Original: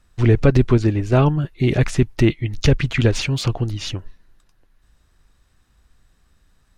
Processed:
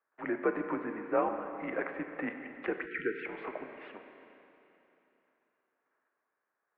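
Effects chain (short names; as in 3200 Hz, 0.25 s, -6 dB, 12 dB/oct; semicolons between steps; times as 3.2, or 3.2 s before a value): gate -54 dBFS, range -7 dB; mistuned SSB -86 Hz 490–2100 Hz; Schroeder reverb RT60 3.2 s, combs from 30 ms, DRR 6 dB; spectral delete 2.86–3.26, 510–1300 Hz; gain -7.5 dB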